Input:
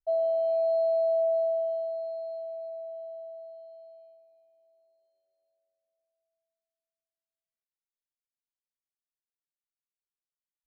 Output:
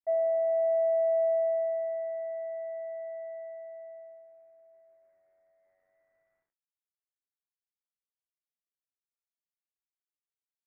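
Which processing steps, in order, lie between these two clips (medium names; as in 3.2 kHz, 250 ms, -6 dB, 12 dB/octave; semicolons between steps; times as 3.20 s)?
companding laws mixed up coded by mu; steep low-pass 2.1 kHz 48 dB/octave; trim -1.5 dB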